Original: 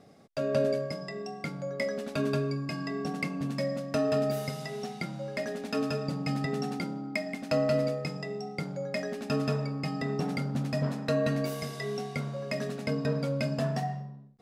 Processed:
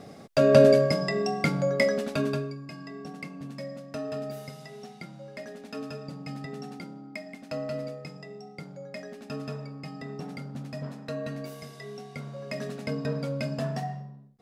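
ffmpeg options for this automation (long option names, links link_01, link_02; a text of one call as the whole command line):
ffmpeg -i in.wav -af "volume=16.5dB,afade=type=out:start_time=1.58:duration=0.61:silence=0.398107,afade=type=out:start_time=2.19:duration=0.36:silence=0.334965,afade=type=in:start_time=12.05:duration=0.61:silence=0.501187" out.wav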